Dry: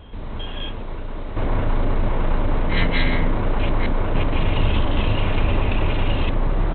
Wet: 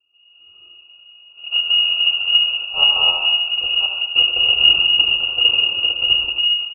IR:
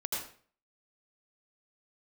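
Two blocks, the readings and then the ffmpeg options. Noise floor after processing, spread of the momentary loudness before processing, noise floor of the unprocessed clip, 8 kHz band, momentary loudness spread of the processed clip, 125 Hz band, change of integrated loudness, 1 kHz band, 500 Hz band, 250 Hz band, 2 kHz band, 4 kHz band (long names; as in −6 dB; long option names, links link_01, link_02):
−50 dBFS, 10 LU, −29 dBFS, can't be measured, 6 LU, below −25 dB, +9.5 dB, −6.5 dB, −12.0 dB, below −20 dB, +9.5 dB, +23.0 dB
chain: -filter_complex "[0:a]equalizer=frequency=500:width_type=o:width=1:gain=-7,equalizer=frequency=1000:width_type=o:width=1:gain=6,equalizer=frequency=2000:width_type=o:width=1:gain=-11,aexciter=amount=1.4:drive=9.1:freq=2200,agate=range=-26dB:threshold=-16dB:ratio=16:detection=peak,dynaudnorm=framelen=170:gausssize=5:maxgain=8.5dB,lowpass=frequency=2500:width_type=q:width=0.5098,lowpass=frequency=2500:width_type=q:width=0.6013,lowpass=frequency=2500:width_type=q:width=0.9,lowpass=frequency=2500:width_type=q:width=2.563,afreqshift=-2900,asuperstop=centerf=1900:order=20:qfactor=1.7,equalizer=frequency=240:width=2.3:gain=-13.5,aecho=1:1:71|142|213|284|355|426:0.266|0.152|0.0864|0.0493|0.0281|0.016,asplit=2[link_01][link_02];[1:a]atrim=start_sample=2205[link_03];[link_02][link_03]afir=irnorm=-1:irlink=0,volume=-5.5dB[link_04];[link_01][link_04]amix=inputs=2:normalize=0,volume=-2.5dB"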